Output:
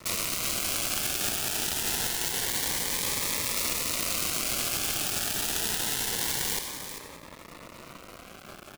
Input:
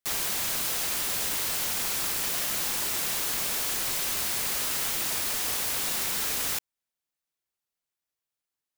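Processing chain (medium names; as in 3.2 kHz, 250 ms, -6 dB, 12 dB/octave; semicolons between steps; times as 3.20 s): high-order bell 4.8 kHz +9 dB 2.8 oct; upward compressor, threshold -50 dBFS; band noise 120–1700 Hz -50 dBFS; feedback delay 93 ms, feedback 37%, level -13.5 dB; in parallel at -1 dB: peak limiter -21 dBFS, peak gain reduction 10.5 dB; on the sum: companded quantiser 2-bit; treble shelf 2.3 kHz -7.5 dB; on a send: delay 394 ms -10 dB; on the sum: Shepard-style phaser rising 0.26 Hz; trim -5.5 dB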